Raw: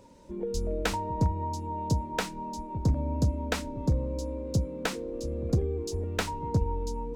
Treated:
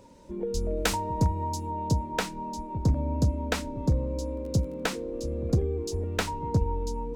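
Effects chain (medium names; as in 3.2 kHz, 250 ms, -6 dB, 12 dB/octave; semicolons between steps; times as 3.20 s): 0.77–1.71 s: treble shelf 5 kHz +8.5 dB; 4.34–4.79 s: crackle 16 per s -41 dBFS; trim +1.5 dB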